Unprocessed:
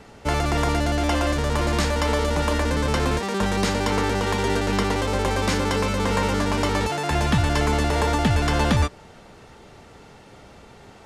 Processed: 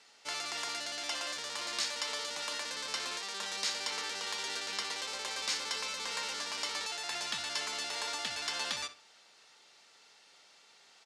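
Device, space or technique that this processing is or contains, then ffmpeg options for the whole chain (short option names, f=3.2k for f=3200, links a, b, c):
piezo pickup straight into a mixer: -filter_complex "[0:a]highpass=f=180:p=1,lowpass=6k,aderivative,equalizer=f=4.5k:t=o:w=0.67:g=3.5,asplit=2[a][b];[b]adelay=63,lowpass=f=3.9k:p=1,volume=-12dB,asplit=2[c][d];[d]adelay=63,lowpass=f=3.9k:p=1,volume=0.27,asplit=2[e][f];[f]adelay=63,lowpass=f=3.9k:p=1,volume=0.27[g];[a][c][e][g]amix=inputs=4:normalize=0"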